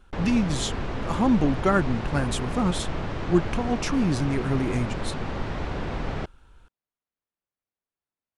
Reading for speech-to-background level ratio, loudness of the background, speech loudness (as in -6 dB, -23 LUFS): 6.0 dB, -32.0 LUFS, -26.0 LUFS